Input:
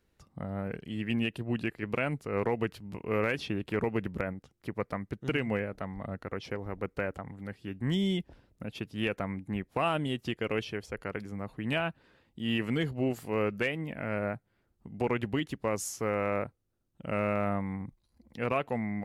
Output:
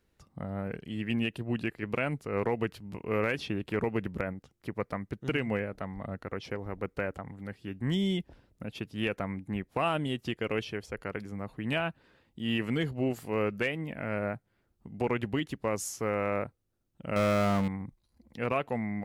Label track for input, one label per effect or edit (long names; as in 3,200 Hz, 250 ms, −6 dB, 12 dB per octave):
17.160000	17.680000	power curve on the samples exponent 0.5